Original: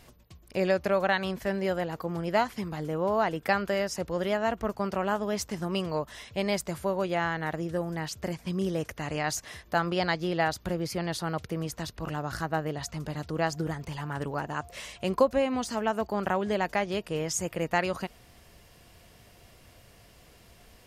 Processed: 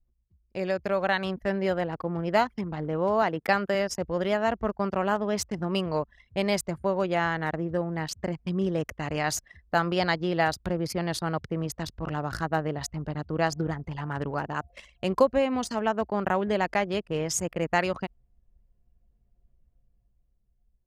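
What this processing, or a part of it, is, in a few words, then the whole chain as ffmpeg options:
voice memo with heavy noise removal: -filter_complex "[0:a]asettb=1/sr,asplit=3[link_01][link_02][link_03];[link_01]atrim=end=3.224[link_04];[link_02]atrim=start=3.22:end=3.75,asetpts=PTS-STARTPTS,afade=type=in:duration=0.004:curve=qsin,afade=type=out:start_time=0.526:duration=0.004:curve=qsin,highpass=110[link_05];[link_03]atrim=start=3.746[link_06];[link_04][link_05]acrossfade=duration=0.004:curve1=hsin:curve2=qsin[link_07];[link_07][link_06]acrossfade=duration=0.004:curve1=qsin:curve2=hsin,anlmdn=1.58,dynaudnorm=framelen=180:gausssize=11:maxgain=7.5dB,volume=-5dB"

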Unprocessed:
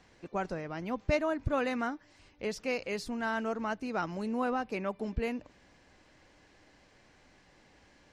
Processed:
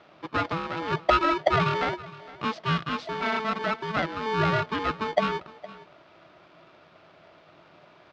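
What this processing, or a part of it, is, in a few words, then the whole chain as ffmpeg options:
ring modulator pedal into a guitar cabinet: -filter_complex "[0:a]asettb=1/sr,asplit=3[link_01][link_02][link_03];[link_01]atrim=end=2.624[link_04];[link_02]atrim=start=2.62:end=4.26,asetpts=PTS-STARTPTS,afade=type=in:duration=0.004:curve=qsin,afade=type=out:start_time=1.636:duration=0.004:curve=qsin,equalizer=frequency=89:width_type=o:width=1.6:gain=-12.5[link_05];[link_03]atrim=start=4.256[link_06];[link_04][link_05]acrossfade=duration=0.004:curve1=hsin:curve2=qsin[link_07];[link_07][link_06]acrossfade=duration=0.004:curve1=qsin:curve2=hsin,aeval=exprs='val(0)*sgn(sin(2*PI*660*n/s))':channel_layout=same,highpass=78,equalizer=frequency=160:width_type=q:width=4:gain=9,equalizer=frequency=320:width_type=q:width=4:gain=7,equalizer=frequency=620:width_type=q:width=4:gain=9,equalizer=frequency=1300:width_type=q:width=4:gain=6,lowpass=frequency=4300:width=0.5412,lowpass=frequency=4300:width=1.3066,aecho=1:1:463:0.112,volume=4dB"

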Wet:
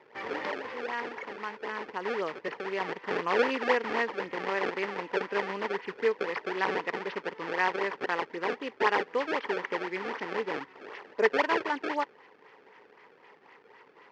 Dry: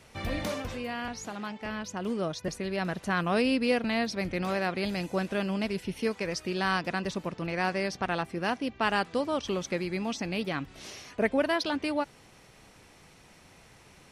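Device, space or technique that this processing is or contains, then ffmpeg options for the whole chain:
circuit-bent sampling toy: -af "acrusher=samples=26:mix=1:aa=0.000001:lfo=1:lforange=41.6:lforate=3.9,highpass=430,equalizer=frequency=430:width_type=q:width=4:gain=9,equalizer=frequency=660:width_type=q:width=4:gain=-7,equalizer=frequency=960:width_type=q:width=4:gain=8,equalizer=frequency=1900:width_type=q:width=4:gain=8,equalizer=frequency=3800:width_type=q:width=4:gain=-7,lowpass=frequency=4300:width=0.5412,lowpass=frequency=4300:width=1.3066"

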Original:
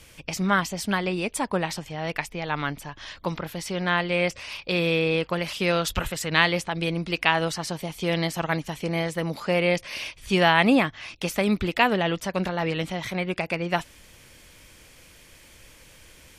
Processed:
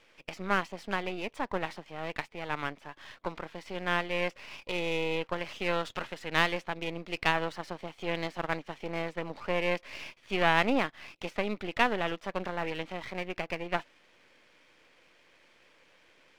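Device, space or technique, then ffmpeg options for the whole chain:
crystal radio: -af "highpass=320,lowpass=2800,aeval=exprs='if(lt(val(0),0),0.251*val(0),val(0))':channel_layout=same,volume=-3dB"

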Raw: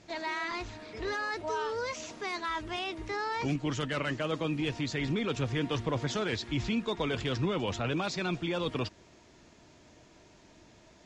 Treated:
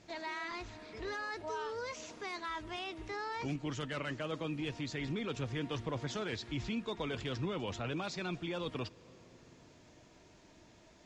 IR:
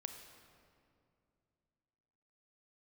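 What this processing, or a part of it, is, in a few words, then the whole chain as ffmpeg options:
compressed reverb return: -filter_complex "[0:a]asplit=2[link_01][link_02];[1:a]atrim=start_sample=2205[link_03];[link_02][link_03]afir=irnorm=-1:irlink=0,acompressor=threshold=-47dB:ratio=6,volume=-0.5dB[link_04];[link_01][link_04]amix=inputs=2:normalize=0,volume=-7.5dB"

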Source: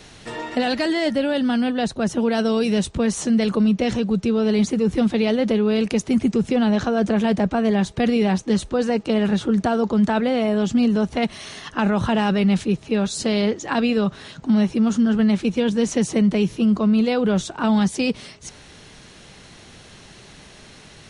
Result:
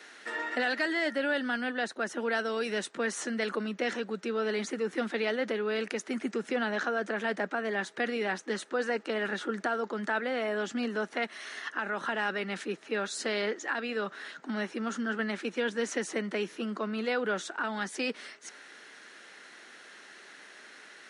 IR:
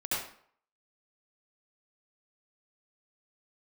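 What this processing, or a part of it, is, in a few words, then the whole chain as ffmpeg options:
laptop speaker: -af "highpass=frequency=280:width=0.5412,highpass=frequency=280:width=1.3066,equalizer=frequency=1400:width_type=o:width=0.34:gain=7,equalizer=frequency=1800:width_type=o:width=0.59:gain=10.5,alimiter=limit=-10.5dB:level=0:latency=1:release=397,volume=-9dB"

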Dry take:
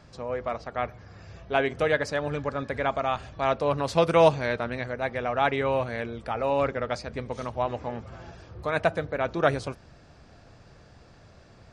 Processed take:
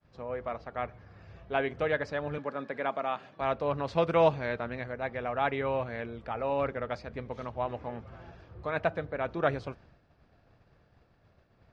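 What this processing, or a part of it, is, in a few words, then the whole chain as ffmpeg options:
hearing-loss simulation: -filter_complex "[0:a]asettb=1/sr,asplit=3[link_01][link_02][link_03];[link_01]atrim=end=2.384[link_04];[link_02]atrim=start=2.38:end=3.41,asetpts=PTS-STARTPTS,afade=type=in:duration=0.004:curve=qsin,afade=type=out:start_time=1.026:duration=0.004:curve=qsin,highpass=frequency=170:width=0.5412,highpass=frequency=170:width=1.3066[link_05];[link_03]atrim=start=3.406[link_06];[link_04][link_05]acrossfade=duration=0.004:curve1=hsin:curve2=qsin[link_07];[link_07][link_06]acrossfade=duration=0.004:curve1=qsin:curve2=hsin,lowpass=3400,agate=range=-33dB:threshold=-46dB:ratio=3:detection=peak,volume=-5dB"

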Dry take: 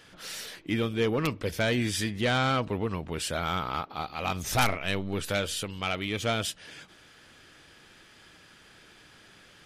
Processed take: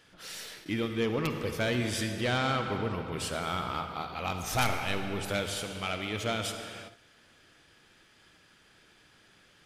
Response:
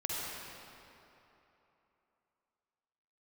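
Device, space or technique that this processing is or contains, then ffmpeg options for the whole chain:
keyed gated reverb: -filter_complex "[0:a]asplit=3[link_01][link_02][link_03];[1:a]atrim=start_sample=2205[link_04];[link_02][link_04]afir=irnorm=-1:irlink=0[link_05];[link_03]apad=whole_len=425822[link_06];[link_05][link_06]sidechaingate=range=-33dB:threshold=-51dB:ratio=16:detection=peak,volume=-6dB[link_07];[link_01][link_07]amix=inputs=2:normalize=0,volume=-6.5dB"

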